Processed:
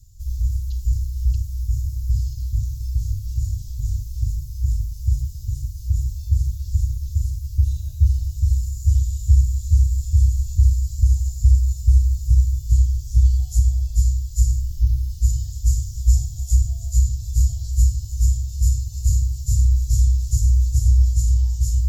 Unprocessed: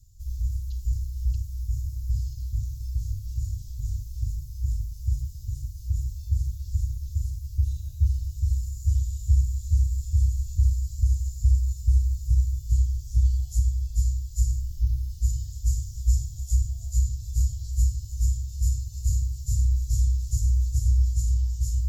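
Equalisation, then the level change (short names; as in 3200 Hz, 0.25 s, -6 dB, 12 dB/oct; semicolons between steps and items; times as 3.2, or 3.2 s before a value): dynamic EQ 610 Hz, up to +7 dB, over -51 dBFS, Q 1; +6.0 dB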